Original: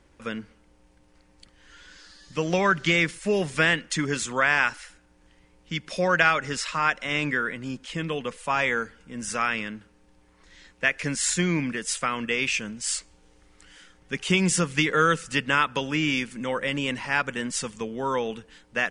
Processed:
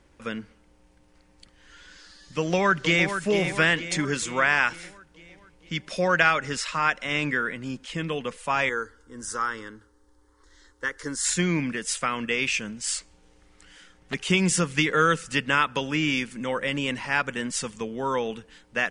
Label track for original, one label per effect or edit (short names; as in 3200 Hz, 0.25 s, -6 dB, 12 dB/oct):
2.380000	3.090000	echo throw 0.46 s, feedback 55%, level -8.5 dB
8.690000	11.250000	fixed phaser centre 670 Hz, stages 6
12.800000	14.140000	Doppler distortion depth 0.44 ms